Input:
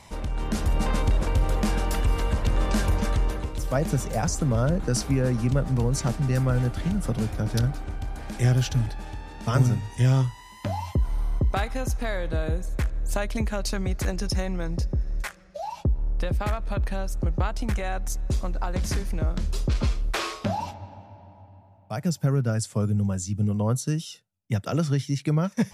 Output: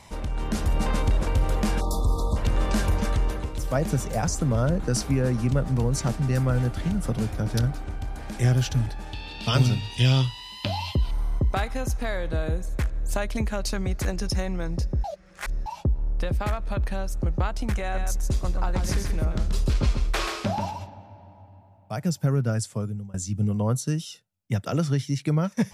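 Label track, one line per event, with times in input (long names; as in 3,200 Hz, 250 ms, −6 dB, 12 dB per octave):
1.810000	2.360000	time-frequency box erased 1,300–3,400 Hz
9.130000	11.110000	flat-topped bell 3,500 Hz +14.5 dB 1.2 octaves
15.040000	15.660000	reverse
17.810000	20.900000	single-tap delay 133 ms −5.5 dB
22.580000	23.140000	fade out, to −23.5 dB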